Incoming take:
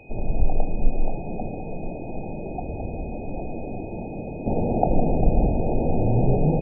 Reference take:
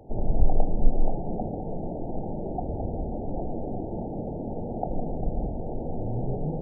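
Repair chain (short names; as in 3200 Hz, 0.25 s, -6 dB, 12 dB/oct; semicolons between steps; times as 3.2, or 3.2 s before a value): notch 2500 Hz, Q 30; inverse comb 1.005 s -21.5 dB; gain 0 dB, from 4.46 s -9.5 dB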